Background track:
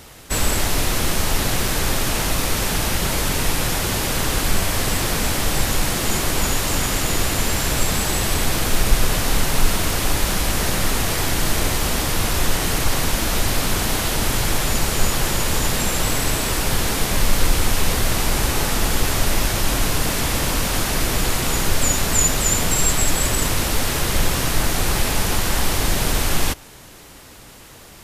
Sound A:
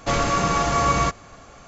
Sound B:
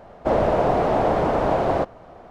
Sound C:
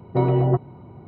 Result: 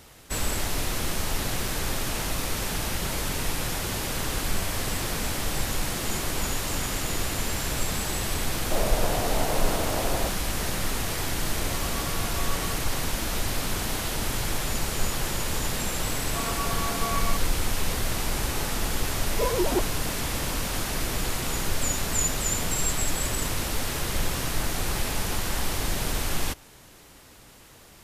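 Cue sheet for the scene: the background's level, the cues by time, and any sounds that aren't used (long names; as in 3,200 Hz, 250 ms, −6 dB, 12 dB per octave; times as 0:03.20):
background track −8 dB
0:08.45: mix in B −10 dB
0:11.63: mix in A −17.5 dB
0:16.27: mix in A −15 dB + comb filter 4.5 ms, depth 84%
0:19.24: mix in C −8 dB + three sine waves on the formant tracks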